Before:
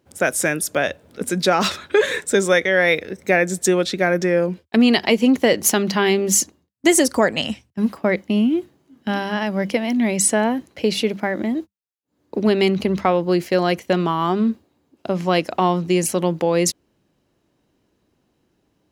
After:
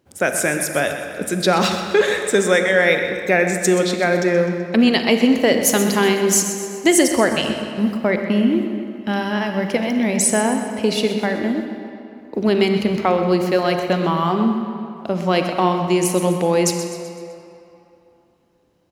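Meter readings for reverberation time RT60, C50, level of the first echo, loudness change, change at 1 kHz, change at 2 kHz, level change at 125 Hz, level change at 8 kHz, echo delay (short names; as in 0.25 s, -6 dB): 2.9 s, 5.0 dB, -11.5 dB, +1.0 dB, +1.5 dB, +1.0 dB, +1.5 dB, +1.0 dB, 0.127 s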